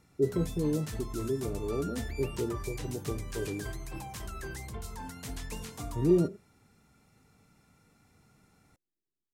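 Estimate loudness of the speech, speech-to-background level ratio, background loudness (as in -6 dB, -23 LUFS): -32.5 LUFS, 8.5 dB, -41.0 LUFS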